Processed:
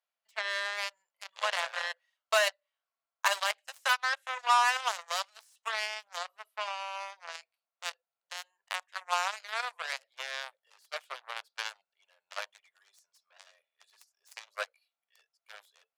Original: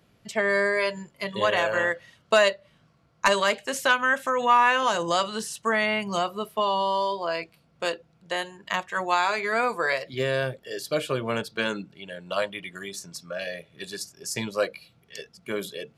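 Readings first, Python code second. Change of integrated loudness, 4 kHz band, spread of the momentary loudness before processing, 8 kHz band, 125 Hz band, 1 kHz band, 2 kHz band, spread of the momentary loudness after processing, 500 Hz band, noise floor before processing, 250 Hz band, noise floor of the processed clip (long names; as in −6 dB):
−7.5 dB, −4.5 dB, 15 LU, −5.0 dB, below −40 dB, −7.5 dB, −7.5 dB, 17 LU, −15.0 dB, −63 dBFS, below −40 dB, below −85 dBFS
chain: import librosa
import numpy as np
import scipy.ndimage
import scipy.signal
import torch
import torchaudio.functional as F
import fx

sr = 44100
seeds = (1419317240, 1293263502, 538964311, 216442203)

y = fx.cheby_harmonics(x, sr, harmonics=(7,), levels_db=(-16,), full_scale_db=-8.0)
y = scipy.signal.sosfilt(scipy.signal.cheby2(4, 40, 320.0, 'highpass', fs=sr, output='sos'), y)
y = y * librosa.db_to_amplitude(-5.0)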